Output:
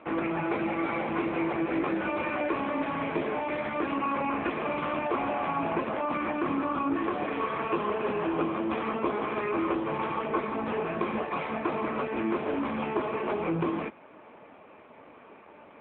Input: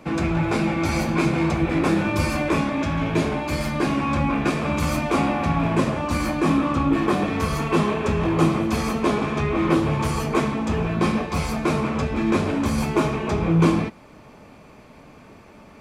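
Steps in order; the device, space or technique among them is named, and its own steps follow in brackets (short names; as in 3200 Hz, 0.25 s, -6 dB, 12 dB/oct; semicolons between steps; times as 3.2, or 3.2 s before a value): 3.93–5.36 HPF 50 Hz 24 dB/oct; voicemail (BPF 350–2700 Hz; compressor 8:1, threshold -24 dBFS, peak gain reduction 8 dB; AMR-NB 7.95 kbps 8000 Hz)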